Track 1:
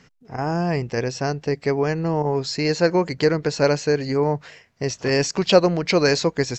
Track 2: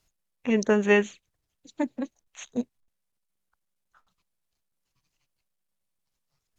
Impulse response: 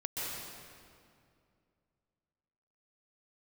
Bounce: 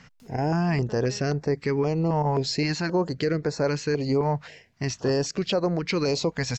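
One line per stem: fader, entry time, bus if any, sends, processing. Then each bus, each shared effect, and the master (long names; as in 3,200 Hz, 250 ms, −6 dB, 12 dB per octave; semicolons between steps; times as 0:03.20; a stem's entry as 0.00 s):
0.0 dB, 0.00 s, no send, high-shelf EQ 5,400 Hz −7 dB; notch on a step sequencer 3.8 Hz 360–3,000 Hz
−12.0 dB, 0.20 s, no send, upward compression, threshold −30 dBFS; automatic ducking −22 dB, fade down 1.55 s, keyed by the first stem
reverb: not used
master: speech leveller within 4 dB 0.5 s; brickwall limiter −15.5 dBFS, peak gain reduction 8.5 dB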